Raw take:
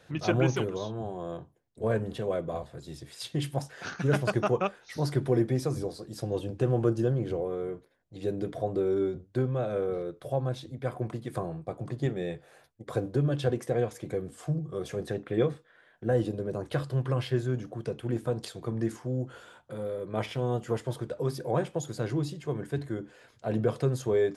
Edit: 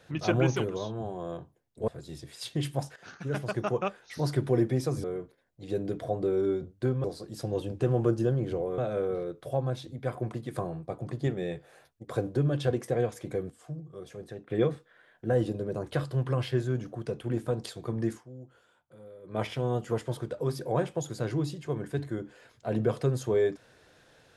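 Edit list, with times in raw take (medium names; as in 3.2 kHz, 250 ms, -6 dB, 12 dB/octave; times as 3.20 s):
1.88–2.67 s: delete
3.75–4.97 s: fade in, from -12.5 dB
5.83–7.57 s: move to 9.57 s
14.29–15.29 s: gain -9 dB
18.89–20.16 s: dip -14.5 dB, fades 0.14 s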